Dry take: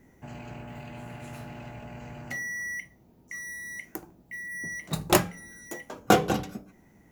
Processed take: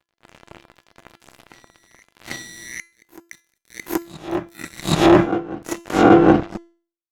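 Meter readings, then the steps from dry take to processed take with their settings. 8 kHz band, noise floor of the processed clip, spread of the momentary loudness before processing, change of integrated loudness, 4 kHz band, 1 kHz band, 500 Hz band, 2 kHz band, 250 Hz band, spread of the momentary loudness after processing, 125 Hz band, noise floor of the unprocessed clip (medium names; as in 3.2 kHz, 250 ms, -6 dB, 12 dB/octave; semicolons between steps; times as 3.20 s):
+1.0 dB, -85 dBFS, 19 LU, +13.0 dB, +6.0 dB, +9.0 dB, +11.5 dB, +3.5 dB, +15.0 dB, 21 LU, +8.5 dB, -59 dBFS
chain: reverse spectral sustain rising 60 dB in 0.52 s; peaking EQ 320 Hz +9 dB 0.36 oct; crossover distortion -32 dBFS; low-pass that closes with the level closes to 1.8 kHz, closed at -20.5 dBFS; feedback comb 340 Hz, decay 0.41 s, harmonics all, mix 60%; on a send: reverse echo 777 ms -20.5 dB; on the sum: loudness maximiser +21.5 dB; trim -1 dB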